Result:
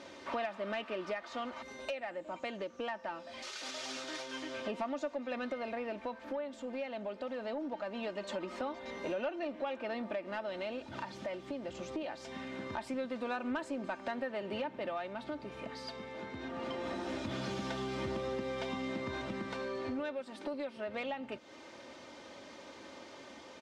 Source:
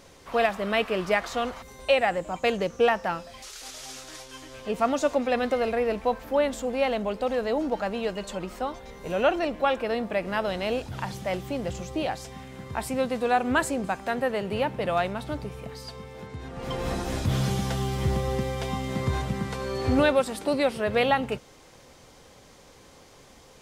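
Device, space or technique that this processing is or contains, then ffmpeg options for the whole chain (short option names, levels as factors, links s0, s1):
AM radio: -af "highpass=180,lowpass=4300,aecho=1:1:3.3:0.59,acompressor=threshold=0.0158:ratio=6,asoftclip=type=tanh:threshold=0.0422,tremolo=f=0.22:d=0.28,volume=1.26"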